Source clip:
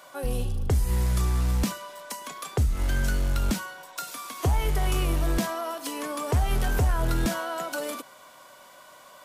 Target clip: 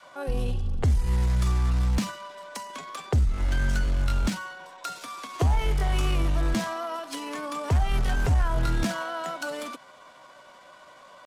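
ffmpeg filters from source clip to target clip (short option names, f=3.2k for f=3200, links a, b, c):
-af "adynamicsmooth=sensitivity=7:basefreq=5.7k,atempo=0.82,adynamicequalizer=threshold=0.00562:dfrequency=430:dqfactor=1.2:tfrequency=430:tqfactor=1.2:attack=5:release=100:ratio=0.375:range=2.5:mode=cutabove:tftype=bell,volume=1dB"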